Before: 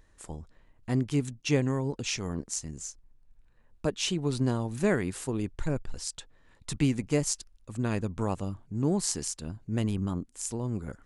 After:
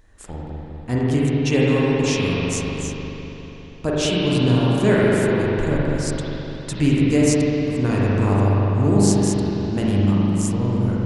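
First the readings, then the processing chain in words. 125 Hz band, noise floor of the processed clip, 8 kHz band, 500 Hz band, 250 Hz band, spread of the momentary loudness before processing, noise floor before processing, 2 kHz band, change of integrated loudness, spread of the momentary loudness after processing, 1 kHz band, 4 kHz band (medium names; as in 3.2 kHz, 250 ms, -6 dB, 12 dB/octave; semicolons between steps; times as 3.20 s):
+12.0 dB, -38 dBFS, +4.5 dB, +12.5 dB, +12.0 dB, 13 LU, -62 dBFS, +12.0 dB, +11.5 dB, 15 LU, +12.0 dB, +8.5 dB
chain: spring tank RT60 3.9 s, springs 40/50 ms, chirp 35 ms, DRR -6.5 dB; trim +4.5 dB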